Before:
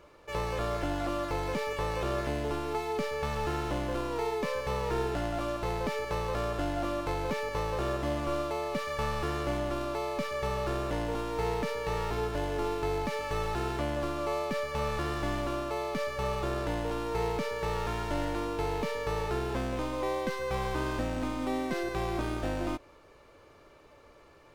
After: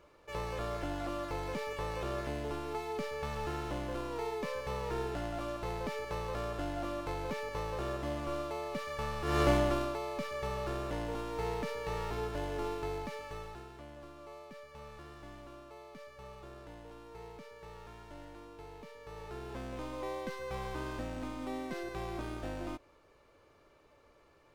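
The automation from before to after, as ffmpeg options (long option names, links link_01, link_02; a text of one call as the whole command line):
ffmpeg -i in.wav -af "volume=16.5dB,afade=type=in:start_time=9.24:duration=0.18:silence=0.266073,afade=type=out:start_time=9.42:duration=0.56:silence=0.281838,afade=type=out:start_time=12.67:duration=1:silence=0.223872,afade=type=in:start_time=19:duration=0.92:silence=0.298538" out.wav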